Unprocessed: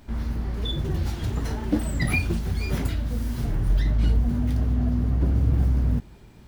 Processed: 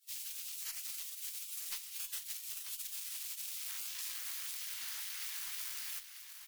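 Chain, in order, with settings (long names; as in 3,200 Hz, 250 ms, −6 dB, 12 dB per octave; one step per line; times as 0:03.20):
running median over 15 samples
RIAA equalisation recording
gate on every frequency bin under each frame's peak −30 dB weak
downward compressor 3 to 1, threshold −52 dBFS, peak gain reduction 11 dB
on a send: single-tap delay 939 ms −10 dB
on the sum: tube saturation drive 45 dB, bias 0.25
guitar amp tone stack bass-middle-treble 10-0-10
level +14.5 dB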